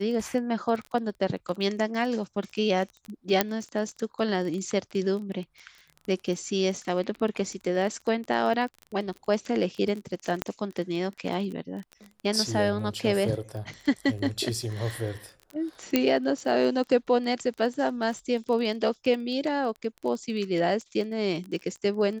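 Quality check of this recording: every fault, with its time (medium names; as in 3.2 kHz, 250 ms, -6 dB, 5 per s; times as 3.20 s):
crackle 17 per s -33 dBFS
3.41 s: pop -5 dBFS
10.42 s: pop -11 dBFS
15.96 s: pop -7 dBFS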